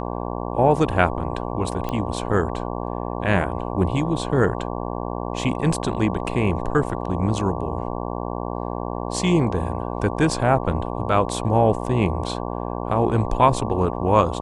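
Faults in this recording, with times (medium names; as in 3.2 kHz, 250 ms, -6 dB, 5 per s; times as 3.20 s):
buzz 60 Hz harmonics 19 -28 dBFS
1.89 s: pop -14 dBFS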